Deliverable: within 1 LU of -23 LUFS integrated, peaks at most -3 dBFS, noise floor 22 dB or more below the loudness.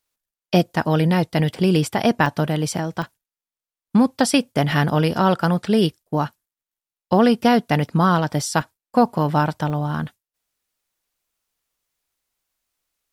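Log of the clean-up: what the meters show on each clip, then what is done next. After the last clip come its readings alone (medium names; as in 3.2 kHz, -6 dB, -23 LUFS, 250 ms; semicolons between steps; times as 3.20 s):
dropouts 5; longest dropout 1.8 ms; loudness -20.0 LUFS; peak level -4.0 dBFS; loudness target -23.0 LUFS
-> interpolate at 2.26/3.02/4.72/8.61/9.70 s, 1.8 ms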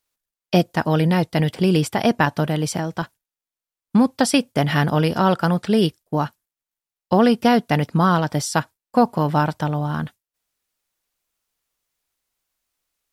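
dropouts 0; loudness -20.0 LUFS; peak level -4.0 dBFS; loudness target -23.0 LUFS
-> trim -3 dB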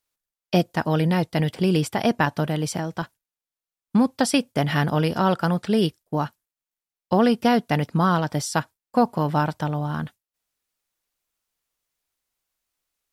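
loudness -23.0 LUFS; peak level -7.0 dBFS; noise floor -92 dBFS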